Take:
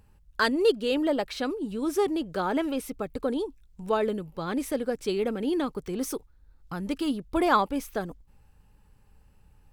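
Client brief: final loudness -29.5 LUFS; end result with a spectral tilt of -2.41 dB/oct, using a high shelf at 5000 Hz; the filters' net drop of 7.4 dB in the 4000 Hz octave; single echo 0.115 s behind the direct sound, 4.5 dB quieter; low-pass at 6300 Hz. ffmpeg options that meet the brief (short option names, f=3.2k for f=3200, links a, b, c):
-af "lowpass=6.3k,equalizer=f=4k:t=o:g=-6,highshelf=f=5k:g=-7.5,aecho=1:1:115:0.596,volume=-2dB"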